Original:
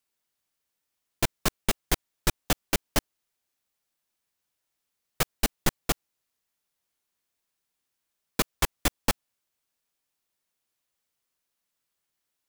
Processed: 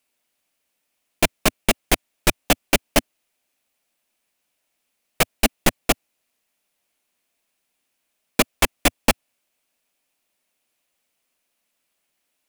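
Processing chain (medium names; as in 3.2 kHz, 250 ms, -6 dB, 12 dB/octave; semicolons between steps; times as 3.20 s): fifteen-band graphic EQ 100 Hz -7 dB, 250 Hz +6 dB, 630 Hz +7 dB, 2.5 kHz +7 dB, 10 kHz +3 dB; trim +5 dB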